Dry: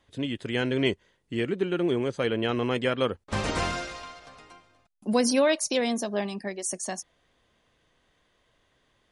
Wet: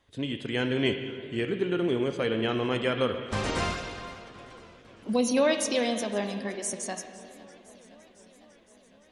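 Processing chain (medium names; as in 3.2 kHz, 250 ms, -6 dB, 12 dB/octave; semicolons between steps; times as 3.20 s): 3.73–5.37 s: touch-sensitive flanger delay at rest 4.3 ms, full sweep at -20.5 dBFS; on a send at -8.5 dB: resonant low-pass 3.5 kHz, resonance Q 2 + reverberation RT60 2.4 s, pre-delay 18 ms; on the sum: modulated delay 509 ms, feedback 72%, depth 215 cents, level -22 dB; trim -1.5 dB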